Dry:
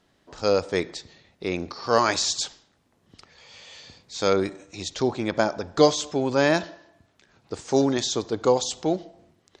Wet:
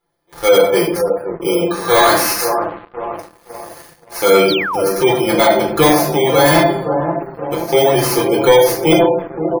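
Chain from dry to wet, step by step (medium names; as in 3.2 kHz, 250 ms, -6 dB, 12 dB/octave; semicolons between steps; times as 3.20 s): bit-reversed sample order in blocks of 16 samples; bass shelf 460 Hz -11.5 dB; comb 5.8 ms, depth 74%; bucket-brigade echo 524 ms, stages 4096, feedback 51%, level -9.5 dB; simulated room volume 810 m³, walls furnished, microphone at 4.1 m; waveshaping leveller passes 3; spectral gate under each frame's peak -30 dB strong; treble shelf 3.8 kHz -10 dB, from 8.87 s -4 dB; 4.48–4.84 s: painted sound fall 480–5100 Hz -20 dBFS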